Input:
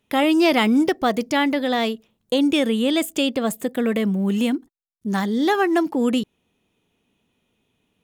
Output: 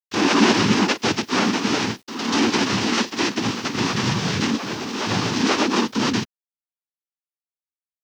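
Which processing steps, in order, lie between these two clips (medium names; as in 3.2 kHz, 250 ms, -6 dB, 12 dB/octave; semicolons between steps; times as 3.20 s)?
formants flattened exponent 0.1; ever faster or slower copies 117 ms, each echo +2 st, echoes 2, each echo -6 dB; noise-vocoded speech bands 6; bit crusher 9-bit; formant shift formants -5 st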